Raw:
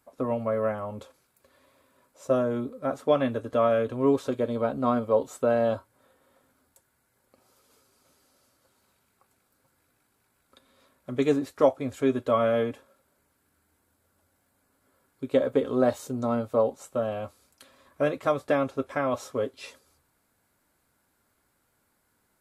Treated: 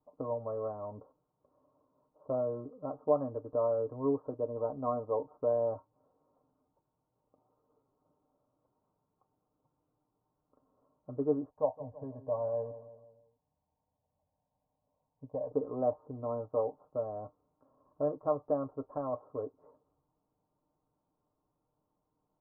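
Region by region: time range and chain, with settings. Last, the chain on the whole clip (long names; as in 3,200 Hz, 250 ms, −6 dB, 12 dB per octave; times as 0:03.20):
0:11.50–0:15.52: phaser with its sweep stopped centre 1,300 Hz, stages 6 + repeating echo 164 ms, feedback 49%, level −16 dB
whole clip: Butterworth low-pass 1,100 Hz 48 dB per octave; comb filter 6.6 ms, depth 54%; dynamic equaliser 190 Hz, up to −5 dB, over −37 dBFS, Q 0.79; level −7.5 dB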